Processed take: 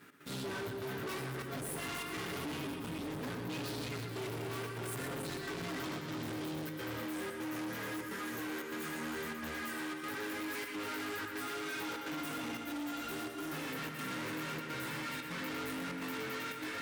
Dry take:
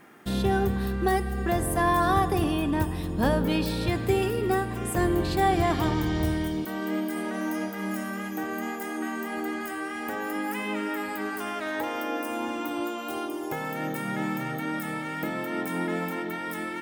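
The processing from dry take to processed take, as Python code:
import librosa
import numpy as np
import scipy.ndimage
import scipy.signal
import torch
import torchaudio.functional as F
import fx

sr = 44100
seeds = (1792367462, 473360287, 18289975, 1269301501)

p1 = fx.lower_of_two(x, sr, delay_ms=7.2)
p2 = fx.peak_eq(p1, sr, hz=730.0, db=-13.0, octaves=0.53)
p3 = p2 + 10.0 ** (-6.5 / 20.0) * np.pad(p2, (int(318 * sr / 1000.0), 0))[:len(p2)]
p4 = fx.chorus_voices(p3, sr, voices=2, hz=0.8, base_ms=17, depth_ms=3.2, mix_pct=45)
p5 = fx.over_compress(p4, sr, threshold_db=-35.0, ratio=-1.0)
p6 = p4 + F.gain(torch.from_numpy(p5), -2.0).numpy()
p7 = fx.step_gate(p6, sr, bpm=148, pattern='x.xxxxx.xxxxx', floor_db=-12.0, edge_ms=4.5)
p8 = p7 + 10.0 ** (-8.5 / 20.0) * np.pad(p7, (int(120 * sr / 1000.0), 0))[:len(p7)]
p9 = np.clip(10.0 ** (33.0 / 20.0) * p8, -1.0, 1.0) / 10.0 ** (33.0 / 20.0)
p10 = scipy.signal.sosfilt(scipy.signal.butter(2, 110.0, 'highpass', fs=sr, output='sos'), p9)
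y = F.gain(torch.from_numpy(p10), -4.5).numpy()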